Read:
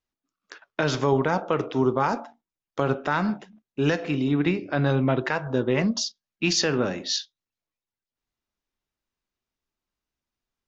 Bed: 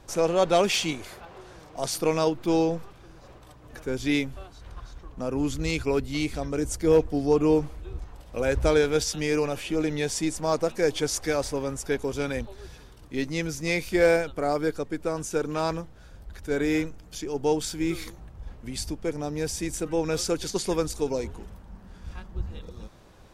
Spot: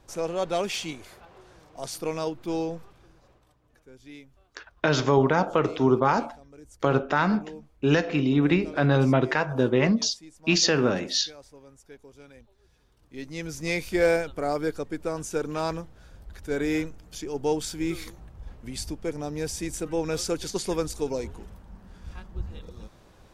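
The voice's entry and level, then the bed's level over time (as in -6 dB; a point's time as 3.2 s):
4.05 s, +1.5 dB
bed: 3.02 s -6 dB
3.88 s -21 dB
12.59 s -21 dB
13.63 s -1.5 dB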